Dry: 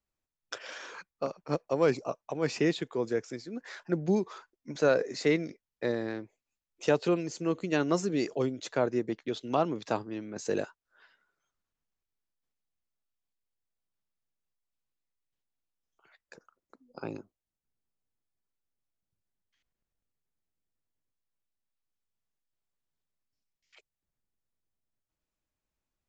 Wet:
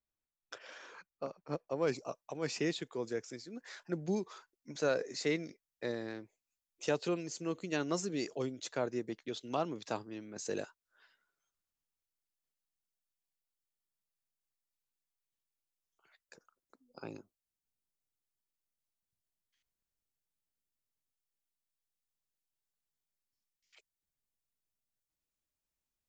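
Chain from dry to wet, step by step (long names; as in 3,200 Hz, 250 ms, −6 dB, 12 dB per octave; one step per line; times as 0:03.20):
high-shelf EQ 3,700 Hz −4 dB, from 0:01.87 +9 dB
level −7.5 dB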